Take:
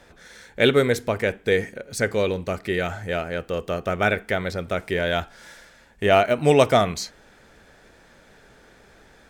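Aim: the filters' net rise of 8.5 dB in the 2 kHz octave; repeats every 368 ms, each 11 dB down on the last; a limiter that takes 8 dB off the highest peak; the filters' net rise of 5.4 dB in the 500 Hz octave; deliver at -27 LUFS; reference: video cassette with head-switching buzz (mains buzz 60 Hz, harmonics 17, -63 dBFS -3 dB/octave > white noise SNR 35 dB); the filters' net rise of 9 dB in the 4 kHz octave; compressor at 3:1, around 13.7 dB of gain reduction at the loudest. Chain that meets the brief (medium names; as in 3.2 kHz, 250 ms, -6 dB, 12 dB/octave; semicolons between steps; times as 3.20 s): peaking EQ 500 Hz +6 dB; peaking EQ 2 kHz +8.5 dB; peaking EQ 4 kHz +8 dB; compression 3:1, threshold -26 dBFS; peak limiter -17.5 dBFS; feedback delay 368 ms, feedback 28%, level -11 dB; mains buzz 60 Hz, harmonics 17, -63 dBFS -3 dB/octave; white noise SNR 35 dB; trim +3.5 dB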